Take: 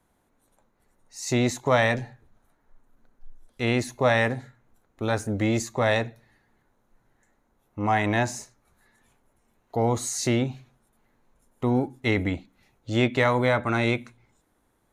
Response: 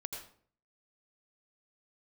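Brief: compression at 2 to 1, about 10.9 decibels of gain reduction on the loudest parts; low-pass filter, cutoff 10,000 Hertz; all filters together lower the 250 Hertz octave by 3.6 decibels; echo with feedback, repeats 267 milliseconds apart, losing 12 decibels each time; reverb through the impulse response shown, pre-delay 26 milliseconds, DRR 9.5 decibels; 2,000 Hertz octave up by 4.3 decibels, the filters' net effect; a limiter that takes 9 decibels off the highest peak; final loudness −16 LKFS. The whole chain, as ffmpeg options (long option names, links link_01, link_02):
-filter_complex "[0:a]lowpass=10000,equalizer=frequency=250:width_type=o:gain=-4.5,equalizer=frequency=2000:width_type=o:gain=5,acompressor=threshold=-36dB:ratio=2,alimiter=level_in=3dB:limit=-24dB:level=0:latency=1,volume=-3dB,aecho=1:1:267|534|801:0.251|0.0628|0.0157,asplit=2[link_01][link_02];[1:a]atrim=start_sample=2205,adelay=26[link_03];[link_02][link_03]afir=irnorm=-1:irlink=0,volume=-8.5dB[link_04];[link_01][link_04]amix=inputs=2:normalize=0,volume=22dB"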